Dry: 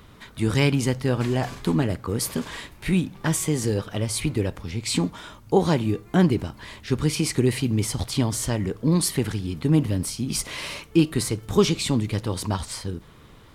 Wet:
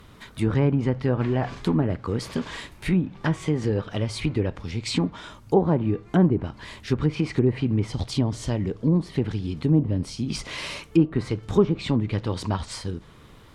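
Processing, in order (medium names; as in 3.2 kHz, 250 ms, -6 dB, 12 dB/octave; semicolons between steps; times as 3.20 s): 7.86–10.30 s: dynamic bell 1.5 kHz, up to -6 dB, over -43 dBFS, Q 0.83; low-pass that closes with the level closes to 980 Hz, closed at -16 dBFS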